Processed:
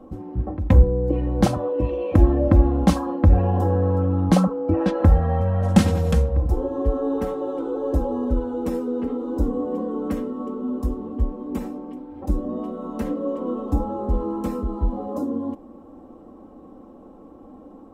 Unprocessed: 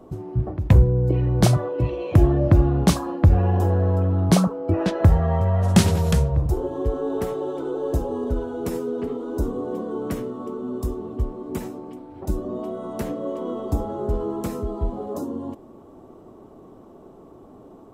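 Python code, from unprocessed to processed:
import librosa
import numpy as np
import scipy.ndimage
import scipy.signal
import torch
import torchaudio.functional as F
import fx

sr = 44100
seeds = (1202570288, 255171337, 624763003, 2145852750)

y = fx.high_shelf(x, sr, hz=2500.0, db=-10.0)
y = y + 0.79 * np.pad(y, (int(3.8 * sr / 1000.0), 0))[:len(y)]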